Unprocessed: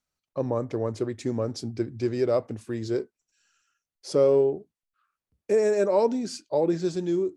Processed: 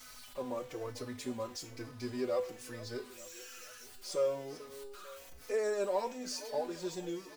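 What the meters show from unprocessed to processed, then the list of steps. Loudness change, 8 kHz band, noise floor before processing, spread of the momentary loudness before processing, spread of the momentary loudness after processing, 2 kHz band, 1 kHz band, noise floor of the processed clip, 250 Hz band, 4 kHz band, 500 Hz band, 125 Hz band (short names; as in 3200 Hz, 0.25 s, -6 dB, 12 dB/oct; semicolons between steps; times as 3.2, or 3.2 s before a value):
-12.5 dB, -1.5 dB, under -85 dBFS, 11 LU, 15 LU, -4.5 dB, -7.5 dB, -53 dBFS, -14.0 dB, -3.0 dB, -12.0 dB, -16.0 dB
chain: zero-crossing step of -39 dBFS; bell 190 Hz -11 dB 2.9 oct; resonator 250 Hz, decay 0.34 s, harmonics all, mix 80%; thinning echo 0.443 s, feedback 60%, high-pass 180 Hz, level -16 dB; endless flanger 4.1 ms -1.1 Hz; gain +8 dB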